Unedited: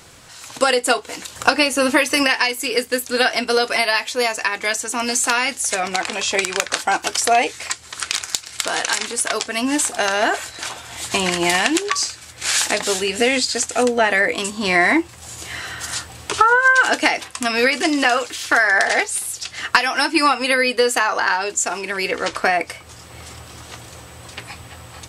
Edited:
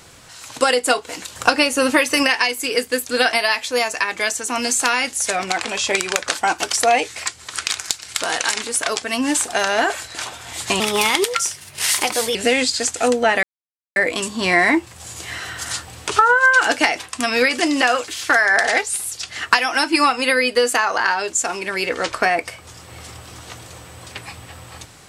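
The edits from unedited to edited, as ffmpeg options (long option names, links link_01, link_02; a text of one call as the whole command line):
ffmpeg -i in.wav -filter_complex "[0:a]asplit=5[link_01][link_02][link_03][link_04][link_05];[link_01]atrim=end=3.332[link_06];[link_02]atrim=start=3.768:end=11.244[link_07];[link_03]atrim=start=11.24:end=13.1,asetpts=PTS-STARTPTS,asetrate=52920,aresample=44100[link_08];[link_04]atrim=start=13.096:end=14.18,asetpts=PTS-STARTPTS,afade=type=out:start_time=1.08:duration=0.004:curve=hsin,apad=pad_dur=0.53[link_09];[link_05]atrim=start=14.18,asetpts=PTS-STARTPTS,afade=type=in:duration=0.004:curve=hsin[link_10];[link_06][link_07]acrossfade=duration=0.004:curve1=hsin:curve2=hsin[link_11];[link_11][link_08]acrossfade=duration=0.004:curve1=hsin:curve2=hsin[link_12];[link_09][link_10]concat=n=2:v=0:a=1[link_13];[link_12][link_13]acrossfade=duration=0.004:curve1=hsin:curve2=hsin" out.wav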